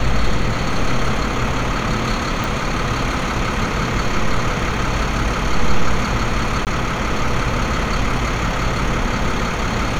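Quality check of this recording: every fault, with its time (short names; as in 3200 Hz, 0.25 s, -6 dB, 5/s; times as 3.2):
2.44 pop
6.65–6.67 gap 18 ms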